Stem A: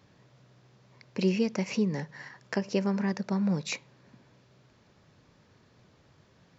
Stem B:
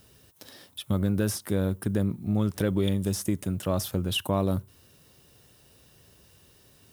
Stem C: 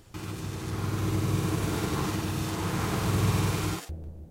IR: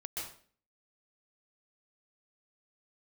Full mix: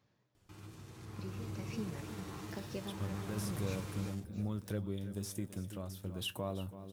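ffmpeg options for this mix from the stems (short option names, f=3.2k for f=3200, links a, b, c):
-filter_complex "[0:a]volume=-9.5dB,asplit=2[a][b];[b]volume=-12.5dB[c];[1:a]adelay=2100,volume=-5dB,asplit=2[d][e];[e]volume=-18dB[f];[2:a]adelay=350,volume=-12.5dB[g];[a][d]amix=inputs=2:normalize=0,tremolo=f=1.1:d=0.68,alimiter=level_in=1dB:limit=-24dB:level=0:latency=1:release=283,volume=-1dB,volume=0dB[h];[c][f]amix=inputs=2:normalize=0,aecho=0:1:332|664|996|1328|1660|1992|2324|2656:1|0.54|0.292|0.157|0.085|0.0459|0.0248|0.0134[i];[g][h][i]amix=inputs=3:normalize=0,flanger=delay=8.3:depth=2.1:regen=65:speed=1.1:shape=sinusoidal"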